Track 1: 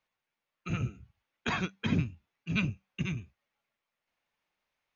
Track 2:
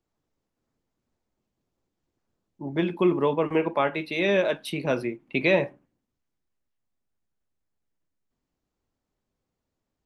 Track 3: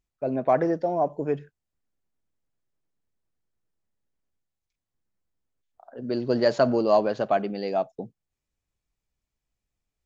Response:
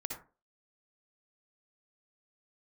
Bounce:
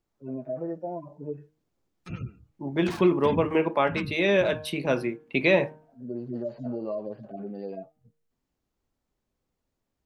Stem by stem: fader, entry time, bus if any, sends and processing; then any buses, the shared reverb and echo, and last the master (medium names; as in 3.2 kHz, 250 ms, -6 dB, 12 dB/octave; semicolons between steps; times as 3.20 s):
-3.0 dB, 1.40 s, no send, dead-time distortion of 0.18 ms; spectral gate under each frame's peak -30 dB strong
+0.5 dB, 0.00 s, no send, none
-4.5 dB, 0.00 s, no send, harmonic-percussive separation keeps harmonic; peaking EQ 5.7 kHz -11.5 dB 2.6 oct; compression, threshold -24 dBFS, peak gain reduction 7 dB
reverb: none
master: de-hum 154.4 Hz, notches 11